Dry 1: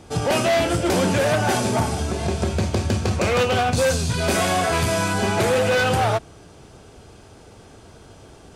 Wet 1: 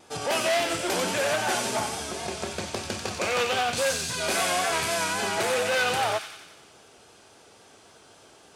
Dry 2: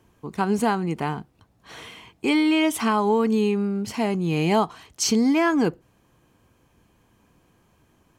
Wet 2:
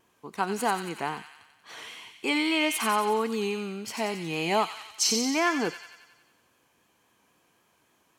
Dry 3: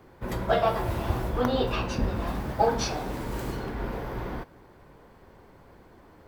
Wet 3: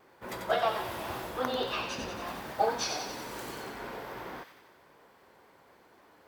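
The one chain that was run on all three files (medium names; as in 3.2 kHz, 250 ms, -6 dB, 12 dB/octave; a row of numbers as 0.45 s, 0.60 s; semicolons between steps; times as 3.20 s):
high-pass 660 Hz 6 dB/octave; vibrato 3.7 Hz 57 cents; on a send: feedback echo behind a high-pass 91 ms, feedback 60%, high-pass 2.1 kHz, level -4.5 dB; on the sum: peak normalisation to -12 dBFS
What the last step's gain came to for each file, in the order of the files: -3.0 dB, -1.0 dB, -1.5 dB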